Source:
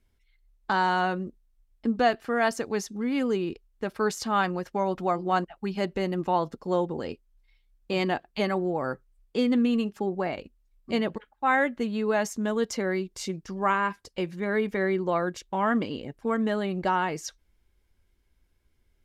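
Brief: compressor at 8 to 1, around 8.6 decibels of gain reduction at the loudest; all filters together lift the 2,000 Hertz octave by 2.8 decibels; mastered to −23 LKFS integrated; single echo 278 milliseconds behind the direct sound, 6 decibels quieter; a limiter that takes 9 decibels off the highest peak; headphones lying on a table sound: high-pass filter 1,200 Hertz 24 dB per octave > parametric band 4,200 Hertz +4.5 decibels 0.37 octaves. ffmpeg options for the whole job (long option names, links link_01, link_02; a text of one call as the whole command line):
ffmpeg -i in.wav -af "equalizer=frequency=2000:width_type=o:gain=4,acompressor=threshold=-25dB:ratio=8,alimiter=limit=-23.5dB:level=0:latency=1,highpass=frequency=1200:width=0.5412,highpass=frequency=1200:width=1.3066,equalizer=frequency=4200:width_type=o:width=0.37:gain=4.5,aecho=1:1:278:0.501,volume=16.5dB" out.wav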